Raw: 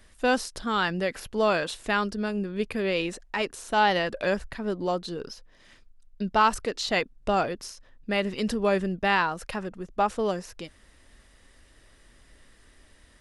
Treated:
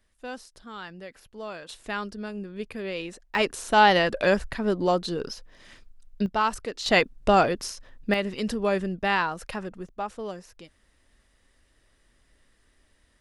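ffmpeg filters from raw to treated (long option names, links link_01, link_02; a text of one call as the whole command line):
ffmpeg -i in.wav -af "asetnsamples=nb_out_samples=441:pad=0,asendcmd='1.69 volume volume -6dB;3.35 volume volume 4.5dB;6.26 volume volume -3.5dB;6.86 volume volume 5.5dB;8.14 volume volume -1dB;9.89 volume volume -8dB',volume=-14dB" out.wav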